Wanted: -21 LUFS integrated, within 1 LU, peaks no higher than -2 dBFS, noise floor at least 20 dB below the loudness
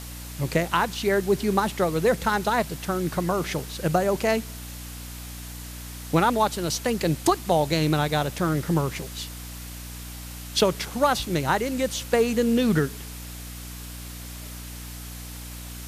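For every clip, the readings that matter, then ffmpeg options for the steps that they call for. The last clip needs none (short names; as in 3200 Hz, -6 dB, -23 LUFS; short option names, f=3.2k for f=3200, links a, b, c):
hum 60 Hz; harmonics up to 300 Hz; hum level -37 dBFS; noise floor -38 dBFS; noise floor target -45 dBFS; loudness -24.5 LUFS; peak -8.5 dBFS; loudness target -21.0 LUFS
-> -af "bandreject=f=60:t=h:w=6,bandreject=f=120:t=h:w=6,bandreject=f=180:t=h:w=6,bandreject=f=240:t=h:w=6,bandreject=f=300:t=h:w=6"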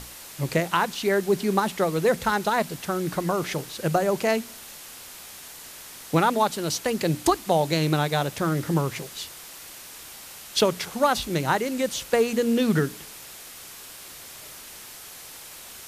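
hum none; noise floor -43 dBFS; noise floor target -45 dBFS
-> -af "afftdn=nr=6:nf=-43"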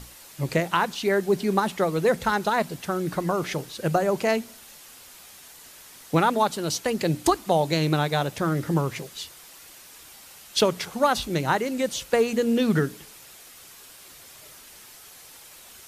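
noise floor -48 dBFS; loudness -24.5 LUFS; peak -8.0 dBFS; loudness target -21.0 LUFS
-> -af "volume=3.5dB"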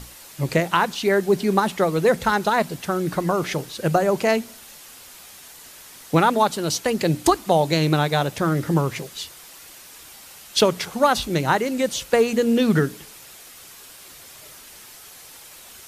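loudness -21.0 LUFS; peak -4.5 dBFS; noise floor -44 dBFS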